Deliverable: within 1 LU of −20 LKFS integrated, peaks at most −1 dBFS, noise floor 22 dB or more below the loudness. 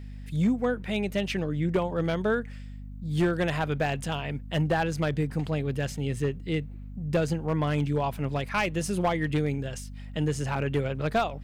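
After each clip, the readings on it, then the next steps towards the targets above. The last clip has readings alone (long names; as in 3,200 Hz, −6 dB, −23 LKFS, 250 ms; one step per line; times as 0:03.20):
share of clipped samples 0.6%; peaks flattened at −18.0 dBFS; mains hum 50 Hz; hum harmonics up to 250 Hz; level of the hum −38 dBFS; integrated loudness −28.5 LKFS; sample peak −18.0 dBFS; target loudness −20.0 LKFS
→ clipped peaks rebuilt −18 dBFS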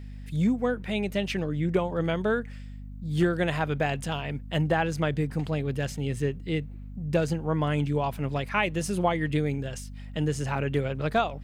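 share of clipped samples 0.0%; mains hum 50 Hz; hum harmonics up to 250 Hz; level of the hum −38 dBFS
→ hum removal 50 Hz, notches 5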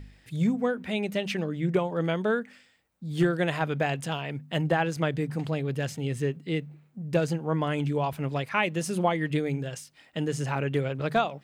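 mains hum none found; integrated loudness −28.5 LKFS; sample peak −11.0 dBFS; target loudness −20.0 LKFS
→ level +8.5 dB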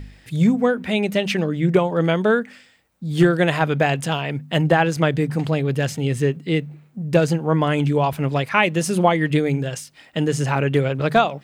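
integrated loudness −20.0 LKFS; sample peak −2.5 dBFS; background noise floor −52 dBFS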